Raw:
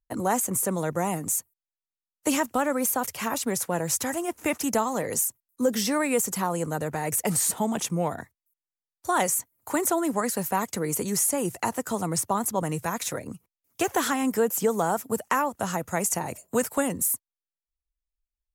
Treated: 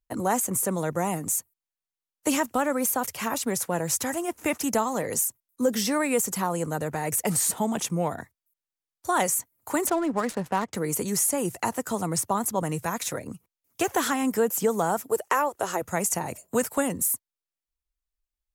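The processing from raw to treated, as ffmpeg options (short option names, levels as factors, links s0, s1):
-filter_complex "[0:a]asettb=1/sr,asplit=3[s0][s1][s2];[s0]atrim=end=9.874[s3];[s1]atrim=start=9.87:end=10.75,asetpts=PTS-STARTPTS,afade=t=in:d=0.004:c=qsin,afade=t=out:st=0.876:d=0.004:c=qsin,adynamicsmooth=sensitivity=6.5:basefreq=1400[s4];[s2]atrim=start=10.746[s5];[s3][s4]acrossfade=d=0.004:c1=hsin:c2=qsin[s6];[s6][s5]acrossfade=d=0.004:c1=qsin:c2=hsin,asettb=1/sr,asplit=3[s7][s8][s9];[s7]atrim=end=15.084[s10];[s8]atrim=start=15.08:end=15.82,asetpts=PTS-STARTPTS,afade=t=in:d=0.004:c=qsin,afade=t=out:st=0.736:d=0.004:c=qsin,lowshelf=f=290:t=q:w=3:g=-7.5[s11];[s9]atrim=start=15.816[s12];[s10][s11]acrossfade=d=0.004:c1=hsin:c2=qsin[s13];[s13][s12]acrossfade=d=0.004:c1=qsin:c2=hsin"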